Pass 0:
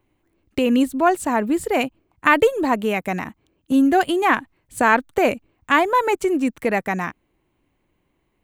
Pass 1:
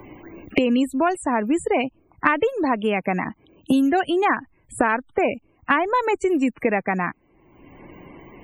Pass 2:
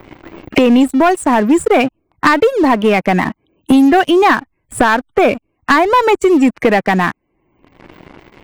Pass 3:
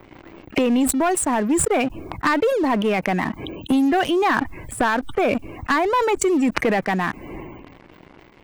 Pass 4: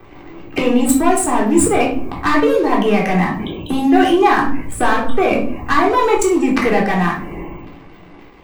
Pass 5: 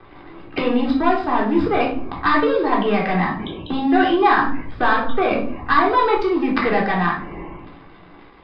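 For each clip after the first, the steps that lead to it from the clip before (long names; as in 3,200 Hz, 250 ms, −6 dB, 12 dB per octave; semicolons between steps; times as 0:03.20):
spectral peaks only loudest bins 64; multiband upward and downward compressor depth 100%; level −2.5 dB
leveller curve on the samples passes 3
level that may fall only so fast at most 34 dB per second; level −9 dB
rectangular room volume 520 cubic metres, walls furnished, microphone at 3.7 metres; level −1 dB
Chebyshev low-pass with heavy ripple 5,100 Hz, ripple 6 dB; level +1 dB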